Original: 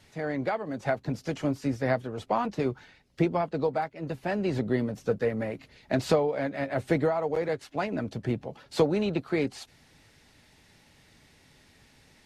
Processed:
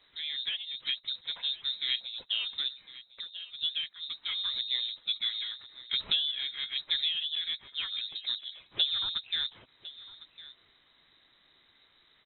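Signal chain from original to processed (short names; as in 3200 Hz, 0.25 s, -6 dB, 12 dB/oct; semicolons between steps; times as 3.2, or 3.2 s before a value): 2.68–3.61 compressor 2.5:1, threshold -40 dBFS, peak gain reduction 13.5 dB; echo 1.055 s -17.5 dB; inverted band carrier 3900 Hz; gain -5.5 dB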